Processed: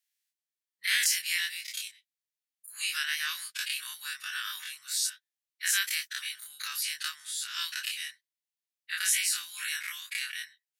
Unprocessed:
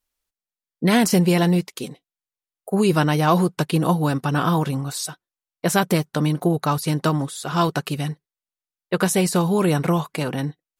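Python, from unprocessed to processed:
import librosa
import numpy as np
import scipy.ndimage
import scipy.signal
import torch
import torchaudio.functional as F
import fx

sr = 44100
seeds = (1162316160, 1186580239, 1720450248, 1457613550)

y = fx.spec_dilate(x, sr, span_ms=60)
y = scipy.signal.sosfilt(scipy.signal.ellip(4, 1.0, 60, 1700.0, 'highpass', fs=sr, output='sos'), y)
y = y * librosa.db_to_amplitude(-4.5)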